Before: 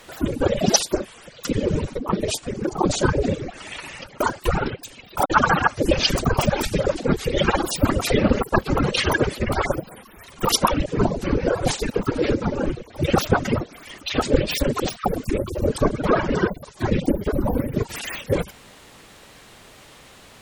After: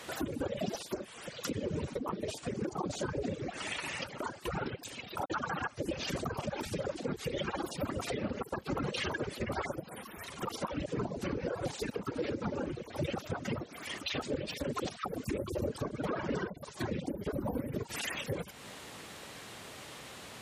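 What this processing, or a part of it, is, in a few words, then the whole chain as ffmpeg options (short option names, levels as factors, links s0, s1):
podcast mastering chain: -af "highpass=84,deesser=0.6,acompressor=threshold=0.0224:ratio=3,alimiter=level_in=1.06:limit=0.0631:level=0:latency=1:release=152,volume=0.944" -ar 32000 -c:a libmp3lame -b:a 112k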